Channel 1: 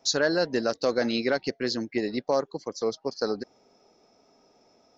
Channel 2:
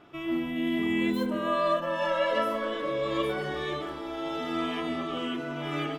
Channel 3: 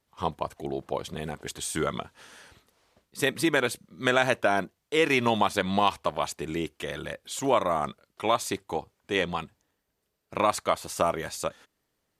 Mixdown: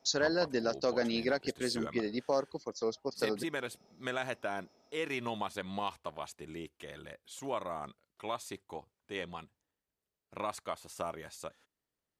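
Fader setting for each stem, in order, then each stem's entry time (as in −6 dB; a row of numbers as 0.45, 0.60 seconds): −6.0 dB, muted, −13.0 dB; 0.00 s, muted, 0.00 s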